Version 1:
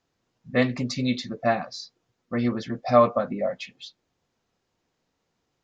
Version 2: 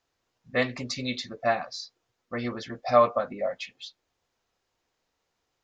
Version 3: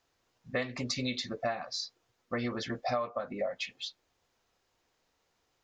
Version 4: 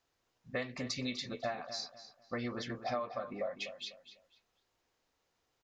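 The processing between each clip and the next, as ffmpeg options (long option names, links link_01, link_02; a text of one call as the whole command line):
ffmpeg -i in.wav -af "equalizer=frequency=180:width=0.68:gain=-10.5" out.wav
ffmpeg -i in.wav -af "acompressor=threshold=-32dB:ratio=8,volume=2.5dB" out.wav
ffmpeg -i in.wav -filter_complex "[0:a]asplit=2[link_01][link_02];[link_02]adelay=249,lowpass=frequency=4800:poles=1,volume=-11dB,asplit=2[link_03][link_04];[link_04]adelay=249,lowpass=frequency=4800:poles=1,volume=0.3,asplit=2[link_05][link_06];[link_06]adelay=249,lowpass=frequency=4800:poles=1,volume=0.3[link_07];[link_01][link_03][link_05][link_07]amix=inputs=4:normalize=0,volume=-4.5dB" out.wav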